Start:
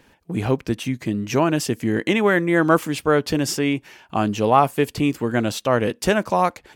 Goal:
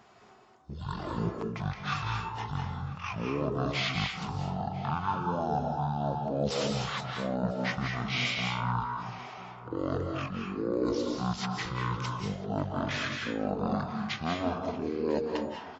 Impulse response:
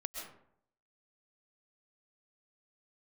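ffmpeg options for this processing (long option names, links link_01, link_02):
-filter_complex "[0:a]highpass=frequency=980:poles=1,areverse,acompressor=threshold=-30dB:ratio=6,areverse,asplit=2[link_01][link_02];[link_02]adelay=425.7,volume=-15dB,highshelf=frequency=4000:gain=-9.58[link_03];[link_01][link_03]amix=inputs=2:normalize=0[link_04];[1:a]atrim=start_sample=2205,afade=type=out:start_time=0.32:duration=0.01,atrim=end_sample=14553,asetrate=70560,aresample=44100[link_05];[link_04][link_05]afir=irnorm=-1:irlink=0,asetrate=18846,aresample=44100,volume=8dB"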